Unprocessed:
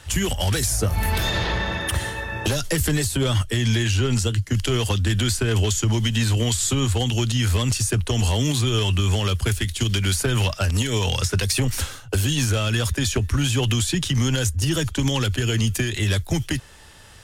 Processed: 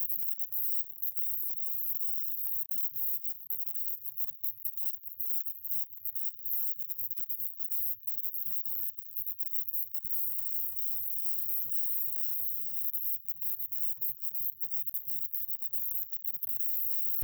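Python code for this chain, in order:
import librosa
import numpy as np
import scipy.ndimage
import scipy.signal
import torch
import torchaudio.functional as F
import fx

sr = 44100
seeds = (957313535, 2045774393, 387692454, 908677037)

y = np.sign(x) * np.sqrt(np.mean(np.square(x)))
y = fx.high_shelf(y, sr, hz=4100.0, db=8.5)
y = fx.room_flutter(y, sr, wall_m=6.5, rt60_s=0.55, at=(10.22, 12.83), fade=0.02)
y = fx.level_steps(y, sr, step_db=10)
y = fx.filter_lfo_highpass(y, sr, shape='square', hz=9.4, low_hz=720.0, high_hz=2900.0, q=2.0)
y = fx.brickwall_bandstop(y, sr, low_hz=190.0, high_hz=14000.0)
y = fx.wow_flutter(y, sr, seeds[0], rate_hz=2.1, depth_cents=150.0)
y = fx.high_shelf(y, sr, hz=12000.0, db=6.0)
y = y * 10.0 ** (-7.5 / 20.0)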